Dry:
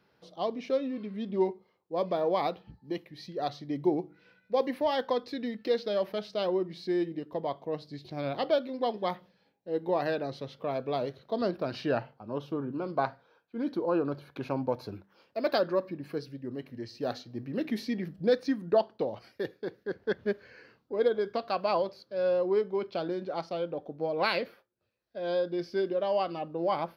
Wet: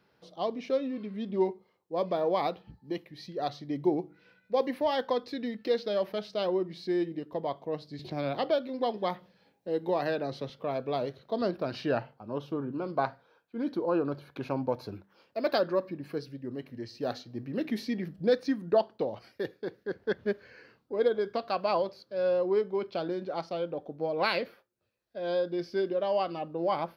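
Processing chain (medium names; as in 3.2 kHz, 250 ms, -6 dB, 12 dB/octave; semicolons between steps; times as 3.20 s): 7.99–10.50 s: three bands compressed up and down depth 40%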